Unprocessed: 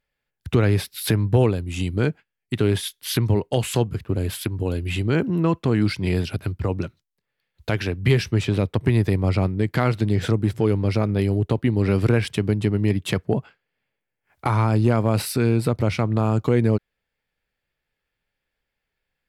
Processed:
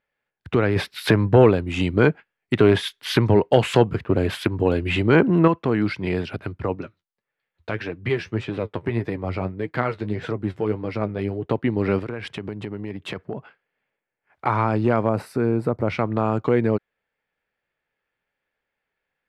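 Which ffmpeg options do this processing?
ffmpeg -i in.wav -filter_complex "[0:a]asettb=1/sr,asplit=3[link_01][link_02][link_03];[link_01]atrim=end=0.764[link_04];[link_02]atrim=start=0.76:end=5.48,asetpts=PTS-STARTPTS,afade=type=in:duration=0.004:curve=qsin,afade=type=out:start_time=4.716:duration=0.004:curve=qsin,acontrast=66[link_05];[link_03]atrim=start=5.476[link_06];[link_04][link_05]acrossfade=duration=0.004:curve1=hsin:curve2=qsin[link_07];[link_07][link_06]acrossfade=duration=0.004:curve1=qsin:curve2=hsin,asettb=1/sr,asplit=3[link_08][link_09][link_10];[link_08]atrim=end=6.754[link_11];[link_09]atrim=start=6.75:end=11.45,asetpts=PTS-STARTPTS,afade=type=in:duration=0.004:curve=qsin,afade=type=out:start_time=4.696:duration=0.004:curve=qsin,flanger=delay=5.9:depth=6.2:regen=45:speed=1.7:shape=triangular[link_12];[link_10]atrim=start=11.446[link_13];[link_11][link_12]acrossfade=duration=0.004:curve1=hsin:curve2=qsin[link_14];[link_14][link_13]acrossfade=duration=0.004:curve1=qsin:curve2=hsin,asettb=1/sr,asplit=3[link_15][link_16][link_17];[link_15]atrim=end=11.994[link_18];[link_16]atrim=start=11.99:end=14.47,asetpts=PTS-STARTPTS,afade=type=in:duration=0.004:curve=qsin,afade=type=out:start_time=2.476:duration=0.004:curve=qsin,acompressor=threshold=-24dB:ratio=12:attack=3.2:release=140:knee=1:detection=peak[link_19];[link_17]atrim=start=14.466[link_20];[link_18][link_19]acrossfade=duration=0.004:curve1=hsin:curve2=qsin[link_21];[link_21][link_20]acrossfade=duration=0.004:curve1=qsin:curve2=hsin,asettb=1/sr,asplit=3[link_22][link_23][link_24];[link_22]atrim=end=15.094[link_25];[link_23]atrim=start=15.09:end=15.88,asetpts=PTS-STARTPTS,afade=type=in:duration=0.004:curve=qsin,afade=type=out:start_time=0.786:duration=0.004:curve=qsin,equalizer=frequency=3200:width=0.78:gain=-13.5[link_26];[link_24]atrim=start=15.876[link_27];[link_25][link_26]acrossfade=duration=0.004:curve1=hsin:curve2=qsin[link_28];[link_28][link_27]acrossfade=duration=0.004:curve1=qsin:curve2=hsin,lowpass=1900,aemphasis=mode=production:type=bsi,volume=3.5dB" out.wav

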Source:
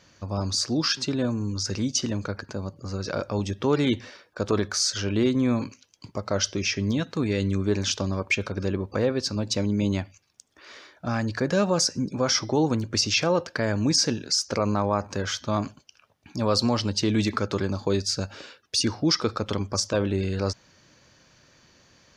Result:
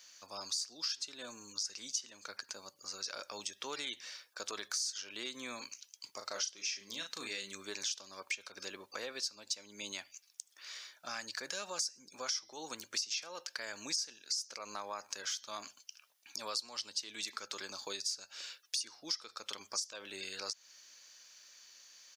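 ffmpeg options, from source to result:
ffmpeg -i in.wav -filter_complex "[0:a]asplit=3[link_01][link_02][link_03];[link_01]afade=type=out:start_time=6.2:duration=0.02[link_04];[link_02]asplit=2[link_05][link_06];[link_06]adelay=36,volume=-5dB[link_07];[link_05][link_07]amix=inputs=2:normalize=0,afade=type=in:start_time=6.2:duration=0.02,afade=type=out:start_time=7.51:duration=0.02[link_08];[link_03]afade=type=in:start_time=7.51:duration=0.02[link_09];[link_04][link_08][link_09]amix=inputs=3:normalize=0,highpass=frequency=300:poles=1,aderivative,acompressor=threshold=-44dB:ratio=4,volume=6.5dB" out.wav

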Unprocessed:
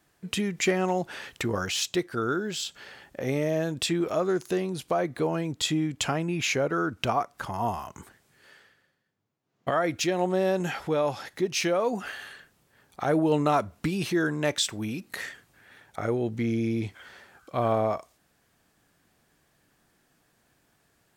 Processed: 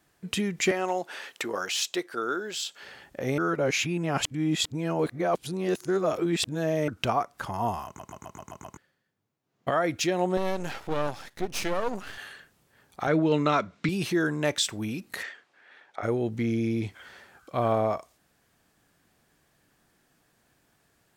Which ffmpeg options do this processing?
ffmpeg -i in.wav -filter_complex "[0:a]asettb=1/sr,asplit=3[link_01][link_02][link_03];[link_01]atrim=end=0.714[link_04];[link_02]atrim=start=0.71:end=2.83,asetpts=PTS-STARTPTS,afade=type=in:duration=0.004:curve=qsin,afade=type=out:start_time=2.116:duration=0.004:curve=qsin,highpass=380[link_05];[link_03]atrim=start=2.826[link_06];[link_04][link_05]acrossfade=duration=0.004:curve1=hsin:curve2=qsin[link_07];[link_07][link_06]acrossfade=duration=0.004:curve1=qsin:curve2=hsin,asettb=1/sr,asplit=3[link_08][link_09][link_10];[link_08]atrim=end=10.374[link_11];[link_09]atrim=start=10.37:end=12.18,asetpts=PTS-STARTPTS,afade=type=in:duration=0.004:curve=qsin,afade=type=out:start_time=1.806:duration=0.004:curve=qsin,aeval=exprs='max(val(0),0)':channel_layout=same[link_12];[link_10]atrim=start=12.176[link_13];[link_11][link_12]acrossfade=duration=0.004:curve1=hsin:curve2=qsin[link_14];[link_14][link_13]acrossfade=duration=0.004:curve1=qsin:curve2=hsin,asettb=1/sr,asplit=3[link_15][link_16][link_17];[link_15]atrim=end=13.074[link_18];[link_16]atrim=start=13.07:end=13.89,asetpts=PTS-STARTPTS,afade=type=in:duration=0.004:curve=qsin,afade=type=out:start_time=0.816:duration=0.004:curve=qsin,highpass=150,equalizer=frequency=170:width_type=q:width=4:gain=6,equalizer=frequency=780:width_type=q:width=4:gain=-7,equalizer=frequency=1400:width_type=q:width=4:gain=4,equalizer=frequency=2200:width_type=q:width=4:gain=7,equalizer=frequency=3700:width_type=q:width=4:gain=6,lowpass=frequency=6800:width=0.5412,lowpass=frequency=6800:width=1.3066[link_19];[link_17]atrim=start=13.886[link_20];[link_18][link_19]acrossfade=duration=0.004:curve1=hsin:curve2=qsin[link_21];[link_21][link_20]acrossfade=duration=0.004:curve1=qsin:curve2=hsin,asplit=3[link_22][link_23][link_24];[link_22]afade=type=out:start_time=15.22:duration=0.02[link_25];[link_23]highpass=420,lowpass=4200,afade=type=in:start_time=15.22:duration=0.02,afade=type=out:start_time=16.02:duration=0.02[link_26];[link_24]afade=type=in:start_time=16.02:duration=0.02[link_27];[link_25][link_26][link_27]amix=inputs=3:normalize=0,asplit=10[link_28][link_29][link_30][link_31][link_32][link_33][link_34][link_35][link_36][link_37];[link_28]atrim=end=3.382[link_38];[link_29]atrim=start=3.378:end=6.882,asetpts=PTS-STARTPTS,areverse[link_39];[link_30]atrim=start=6.878:end=7.992[link_40];[link_31]atrim=start=7.858:end=7.992[link_41];[link_32]atrim=start=7.858:end=7.992[link_42];[link_33]atrim=start=7.858:end=7.992[link_43];[link_34]atrim=start=7.858:end=7.992[link_44];[link_35]atrim=start=7.858:end=7.992[link_45];[link_36]atrim=start=7.858:end=7.992[link_46];[link_37]atrim=start=8.768[link_47];[link_38][link_39]acrossfade=duration=0.004:curve1=hsin:curve2=hsin[link_48];[link_48][link_40]acrossfade=duration=0.004:curve1=hsin:curve2=hsin[link_49];[link_49][link_41]acrossfade=duration=0.004:curve1=hsin:curve2=hsin[link_50];[link_50][link_42]acrossfade=duration=0.004:curve1=hsin:curve2=hsin[link_51];[link_51][link_43]acrossfade=duration=0.004:curve1=hsin:curve2=hsin[link_52];[link_52][link_44]acrossfade=duration=0.004:curve1=hsin:curve2=hsin[link_53];[link_53][link_45]acrossfade=duration=0.004:curve1=hsin:curve2=hsin[link_54];[link_54][link_46]acrossfade=duration=0.004:curve1=hsin:curve2=hsin[link_55];[link_55][link_47]acrossfade=duration=0.004:curve1=hsin:curve2=hsin" out.wav

